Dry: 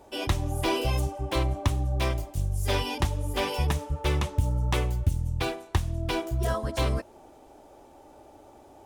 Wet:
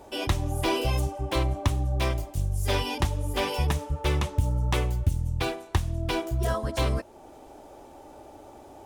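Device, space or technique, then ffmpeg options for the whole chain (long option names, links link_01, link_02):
parallel compression: -filter_complex "[0:a]asplit=2[link_01][link_02];[link_02]acompressor=threshold=-45dB:ratio=6,volume=-3.5dB[link_03];[link_01][link_03]amix=inputs=2:normalize=0"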